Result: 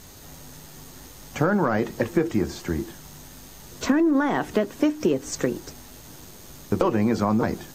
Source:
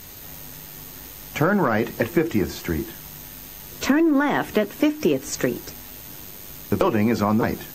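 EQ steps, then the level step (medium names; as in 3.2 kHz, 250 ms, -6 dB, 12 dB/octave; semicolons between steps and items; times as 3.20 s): low-pass 10 kHz 12 dB/octave; peaking EQ 2.5 kHz -5.5 dB 1.1 oct; -1.5 dB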